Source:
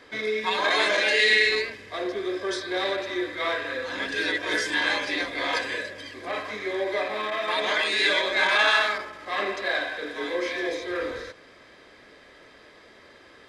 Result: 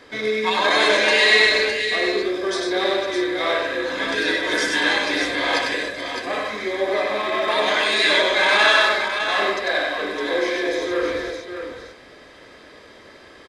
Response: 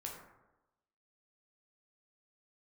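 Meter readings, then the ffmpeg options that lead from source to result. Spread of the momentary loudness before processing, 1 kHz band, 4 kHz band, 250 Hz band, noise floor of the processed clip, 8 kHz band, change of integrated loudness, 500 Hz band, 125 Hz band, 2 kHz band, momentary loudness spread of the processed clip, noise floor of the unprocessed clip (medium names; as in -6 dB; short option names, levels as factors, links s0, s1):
12 LU, +6.0 dB, +6.0 dB, +7.5 dB, -46 dBFS, +7.0 dB, +5.5 dB, +7.0 dB, +5.5 dB, +5.0 dB, 11 LU, -52 dBFS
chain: -af "equalizer=f=2000:t=o:w=1.7:g=-2.5,aecho=1:1:97|610:0.668|0.473,volume=1.78"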